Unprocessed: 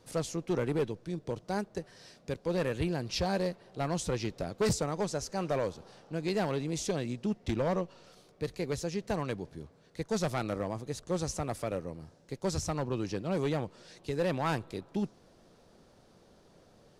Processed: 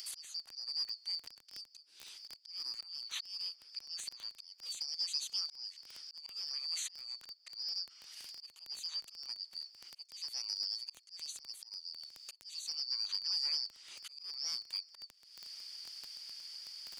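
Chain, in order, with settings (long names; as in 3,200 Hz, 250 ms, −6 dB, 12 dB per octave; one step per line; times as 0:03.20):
band-splitting scrambler in four parts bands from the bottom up 2341
high-shelf EQ 4,300 Hz −10 dB
harmonic and percussive parts rebalanced harmonic −3 dB
first difference
upward compression, threshold −51 dBFS
volume swells 580 ms
surface crackle 11 per second −46 dBFS
multiband upward and downward compressor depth 40%
level +9 dB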